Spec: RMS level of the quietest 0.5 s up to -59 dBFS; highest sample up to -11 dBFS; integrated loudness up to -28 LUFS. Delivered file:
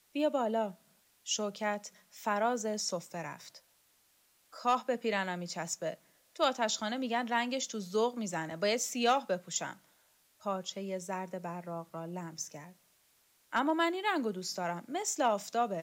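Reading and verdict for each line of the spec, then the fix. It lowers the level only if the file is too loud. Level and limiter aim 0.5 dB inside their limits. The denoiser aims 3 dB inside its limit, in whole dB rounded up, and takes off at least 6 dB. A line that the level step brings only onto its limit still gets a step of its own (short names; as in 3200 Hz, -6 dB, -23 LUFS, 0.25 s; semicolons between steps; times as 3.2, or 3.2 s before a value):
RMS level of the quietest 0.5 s -70 dBFS: OK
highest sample -19.0 dBFS: OK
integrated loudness -34.0 LUFS: OK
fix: none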